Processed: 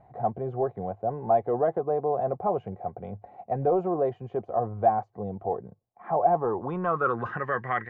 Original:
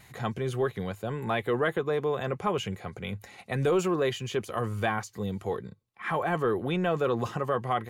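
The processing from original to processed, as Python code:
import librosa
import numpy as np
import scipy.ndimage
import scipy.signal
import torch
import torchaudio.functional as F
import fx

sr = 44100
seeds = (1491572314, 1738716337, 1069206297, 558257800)

y = fx.filter_sweep_lowpass(x, sr, from_hz=720.0, to_hz=1800.0, start_s=6.27, end_s=7.44, q=6.6)
y = y * librosa.db_to_amplitude(-3.5)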